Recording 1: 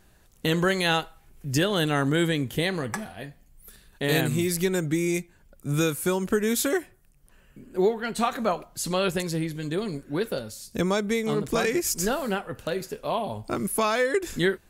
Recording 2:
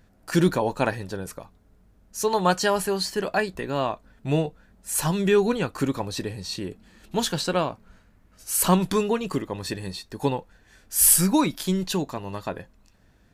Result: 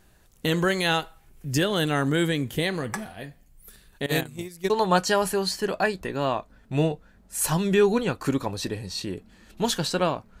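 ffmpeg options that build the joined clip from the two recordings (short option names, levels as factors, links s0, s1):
-filter_complex "[0:a]asettb=1/sr,asplit=3[s0][s1][s2];[s0]atrim=end=4.064[s3];[s1]atrim=start=4.06:end=4.7,asetpts=PTS-STARTPTS,afade=t=in:d=0.004:c=qsin,afade=t=out:st=0.636:d=0.004:c=qsin,agate=range=0.126:threshold=0.0708:ratio=16:release=100:detection=peak[s4];[s2]atrim=start=4.696[s5];[s3][s4]acrossfade=d=0.004:c1=hsin:c2=qsin[s6];[s6][s5]acrossfade=d=0.004:c1=qsin:c2=hsin,apad=whole_dur=10.4,atrim=end=10.4,atrim=end=4.702[s7];[1:a]atrim=start=2.238:end=7.94[s8];[s7][s8]acrossfade=d=0.004:c1=hsin:c2=hsin"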